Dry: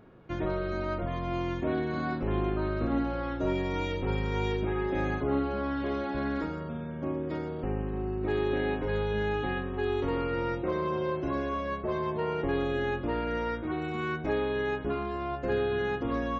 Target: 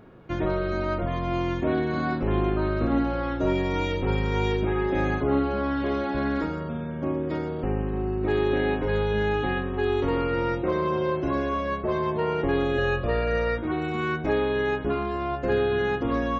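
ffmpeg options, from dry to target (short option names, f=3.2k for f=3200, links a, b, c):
-filter_complex "[0:a]asettb=1/sr,asplit=3[a][b][c];[a]atrim=end=12.784[d];[b]atrim=start=12.78:end=13.58,asetpts=PTS-STARTPTS,afade=t=in:d=0.004:c=qsin,afade=t=out:st=0.796:d=0.004:c=qsin,aecho=1:1:1.7:0.76,atrim=end_sample=35280[e];[c]atrim=start=13.576[f];[d][e]acrossfade=d=0.004:c1=hsin:c2=qsin[g];[g][f]acrossfade=d=0.004:c1=qsin:c2=hsin,volume=5dB"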